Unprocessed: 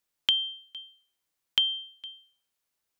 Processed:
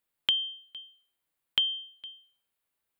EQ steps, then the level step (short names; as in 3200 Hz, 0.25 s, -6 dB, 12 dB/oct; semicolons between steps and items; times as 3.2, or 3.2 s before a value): bell 5800 Hz -12 dB 0.66 oct; 0.0 dB